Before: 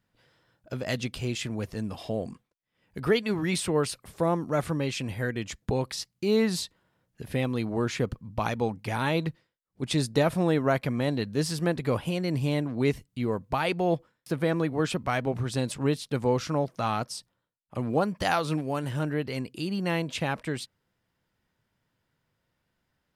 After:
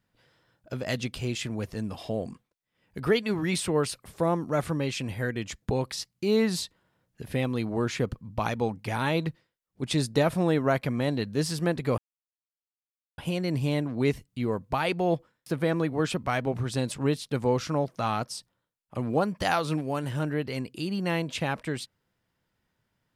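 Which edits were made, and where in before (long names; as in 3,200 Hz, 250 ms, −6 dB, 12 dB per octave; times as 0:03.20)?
0:11.98: splice in silence 1.20 s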